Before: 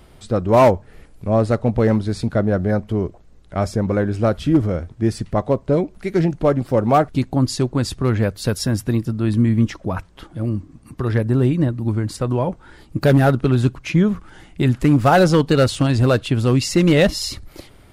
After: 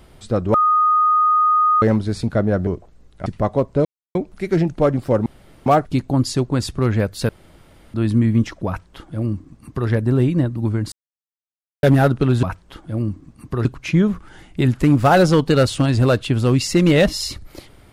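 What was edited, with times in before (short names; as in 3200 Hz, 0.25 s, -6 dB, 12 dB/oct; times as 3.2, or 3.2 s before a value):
0.54–1.82 bleep 1240 Hz -12 dBFS
2.67–2.99 cut
3.58–5.19 cut
5.78 insert silence 0.30 s
6.89 insert room tone 0.40 s
8.52–9.17 room tone
9.9–11.12 copy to 13.66
12.15–13.06 mute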